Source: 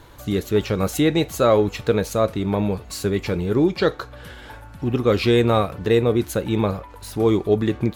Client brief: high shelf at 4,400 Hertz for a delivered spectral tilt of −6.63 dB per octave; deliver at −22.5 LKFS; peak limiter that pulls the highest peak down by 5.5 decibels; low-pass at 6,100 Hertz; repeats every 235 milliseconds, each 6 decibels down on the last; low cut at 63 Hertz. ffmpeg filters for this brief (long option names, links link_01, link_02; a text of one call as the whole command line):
ffmpeg -i in.wav -af "highpass=63,lowpass=6100,highshelf=frequency=4400:gain=-8.5,alimiter=limit=-11dB:level=0:latency=1,aecho=1:1:235|470|705|940|1175|1410:0.501|0.251|0.125|0.0626|0.0313|0.0157,volume=-0.5dB" out.wav